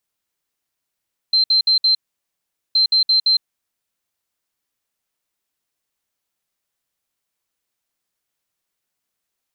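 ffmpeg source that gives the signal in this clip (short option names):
-f lavfi -i "aevalsrc='0.266*sin(2*PI*4120*t)*clip(min(mod(mod(t,1.42),0.17),0.11-mod(mod(t,1.42),0.17))/0.005,0,1)*lt(mod(t,1.42),0.68)':d=2.84:s=44100"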